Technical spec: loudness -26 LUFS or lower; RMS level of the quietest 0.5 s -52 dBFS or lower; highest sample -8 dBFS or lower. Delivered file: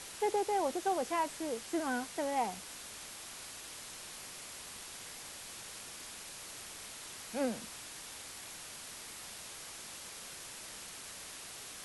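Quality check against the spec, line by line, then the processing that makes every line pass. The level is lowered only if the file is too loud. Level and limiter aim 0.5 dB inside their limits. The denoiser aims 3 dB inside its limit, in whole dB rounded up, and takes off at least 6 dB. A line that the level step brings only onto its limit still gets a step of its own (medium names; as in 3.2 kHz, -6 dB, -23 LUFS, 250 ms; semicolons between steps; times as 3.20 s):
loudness -39.5 LUFS: pass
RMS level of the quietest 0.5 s -48 dBFS: fail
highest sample -21.0 dBFS: pass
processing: noise reduction 7 dB, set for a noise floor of -48 dBFS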